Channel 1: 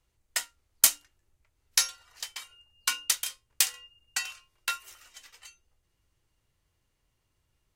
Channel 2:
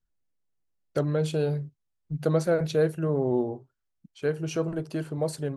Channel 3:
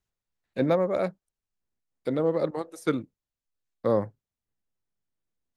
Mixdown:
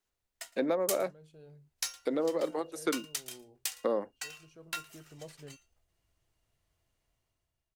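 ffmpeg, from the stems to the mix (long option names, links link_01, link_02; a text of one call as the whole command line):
ffmpeg -i stem1.wav -i stem2.wav -i stem3.wav -filter_complex "[0:a]equalizer=frequency=670:width=7.6:gain=10.5,dynaudnorm=framelen=190:gausssize=7:maxgain=12.5dB,acrusher=bits=4:mode=log:mix=0:aa=0.000001,adelay=50,volume=-15.5dB,asplit=2[link_01][link_02];[link_02]volume=-23.5dB[link_03];[1:a]volume=-18.5dB[link_04];[2:a]highpass=frequency=240:width=0.5412,highpass=frequency=240:width=1.3066,acompressor=threshold=-31dB:ratio=3,volume=2dB,asplit=2[link_05][link_06];[link_06]apad=whole_len=245537[link_07];[link_04][link_07]sidechaincompress=threshold=-40dB:ratio=8:attack=26:release=1270[link_08];[link_03]aecho=0:1:113:1[link_09];[link_01][link_08][link_05][link_09]amix=inputs=4:normalize=0" out.wav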